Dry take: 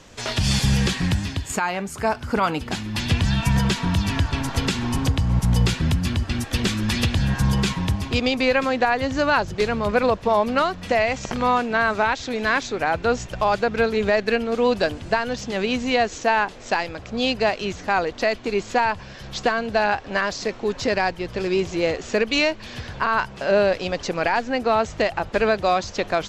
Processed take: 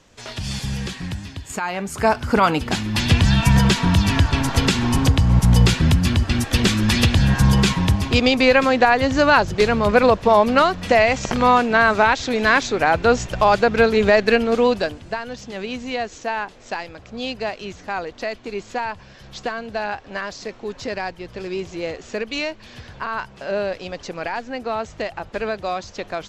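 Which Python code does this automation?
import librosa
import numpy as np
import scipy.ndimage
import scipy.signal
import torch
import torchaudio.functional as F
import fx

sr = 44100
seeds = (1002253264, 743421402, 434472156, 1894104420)

y = fx.gain(x, sr, db=fx.line((1.33, -7.0), (2.03, 5.0), (14.54, 5.0), (15.04, -5.5)))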